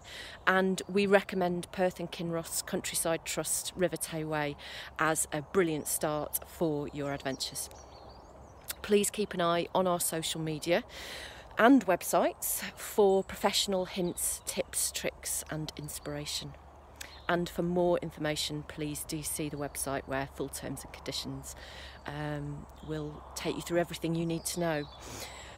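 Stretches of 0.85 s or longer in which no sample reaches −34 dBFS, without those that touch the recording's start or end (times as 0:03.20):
0:07.71–0:08.68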